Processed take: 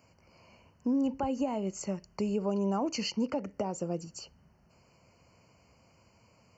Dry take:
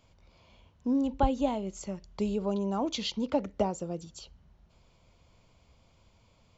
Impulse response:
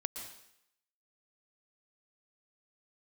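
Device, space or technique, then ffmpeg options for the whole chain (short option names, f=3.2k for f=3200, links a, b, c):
PA system with an anti-feedback notch: -af "highpass=110,asuperstop=centerf=3600:order=20:qfactor=3,alimiter=level_in=1dB:limit=-24dB:level=0:latency=1:release=206,volume=-1dB,volume=3dB"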